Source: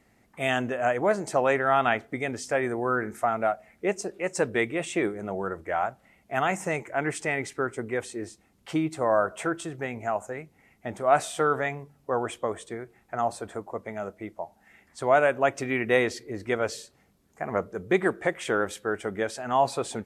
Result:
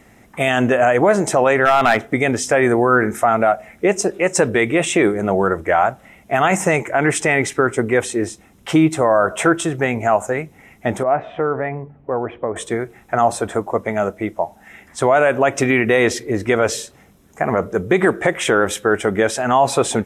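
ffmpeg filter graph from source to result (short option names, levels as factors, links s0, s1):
-filter_complex "[0:a]asettb=1/sr,asplit=3[s0][s1][s2];[s0]atrim=end=1.654[s3];[s1]atrim=start=1.65:end=2.05,asetpts=PTS-STARTPTS,afade=t=in:d=0.004:c=qsin,afade=t=out:st=0.396:d=0.004:c=qsin,highpass=61,aeval=exprs='clip(val(0),-1,0.1)':c=same[s4];[s2]atrim=start=2.046[s5];[s3][s4]acrossfade=d=0.004:c1=hsin:c2=qsin[s6];[s6][s5]acrossfade=d=0.004:c1=qsin:c2=hsin,asettb=1/sr,asplit=3[s7][s8][s9];[s7]atrim=end=11.034[s10];[s8]atrim=start=11.03:end=12.56,asetpts=PTS-STARTPTS,afade=t=in:d=0.004:c=qsin,afade=t=out:st=1.526:d=0.004:c=qsin,lowpass=f=2000:w=0.5412,lowpass=f=2000:w=1.3066,equalizer=f=1400:w=1.4:g=-6.5,acompressor=threshold=0.00631:ratio=1.5:attack=3.2:release=140:knee=1:detection=peak[s11];[s9]atrim=start=12.556[s12];[s10][s11]acrossfade=d=0.004:c1=hsin:c2=qsin[s13];[s13][s12]acrossfade=d=0.004:c1=qsin:c2=hsin,bandreject=f=4500:w=6.1,alimiter=level_in=7.94:limit=0.891:release=50:level=0:latency=1,volume=0.668"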